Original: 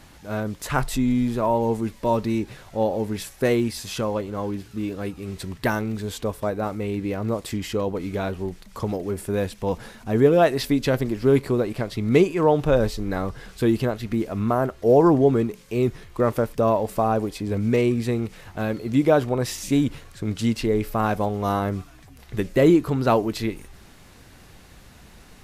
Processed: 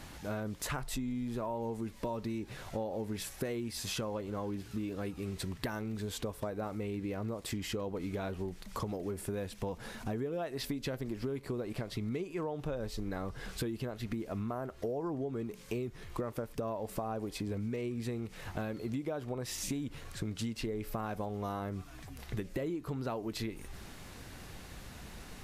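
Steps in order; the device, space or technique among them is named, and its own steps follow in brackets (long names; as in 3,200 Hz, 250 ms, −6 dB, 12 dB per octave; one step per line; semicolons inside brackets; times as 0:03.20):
serial compression, leveller first (downward compressor 2.5 to 1, threshold −23 dBFS, peak gain reduction 8.5 dB; downward compressor 5 to 1, threshold −35 dBFS, peak gain reduction 15 dB)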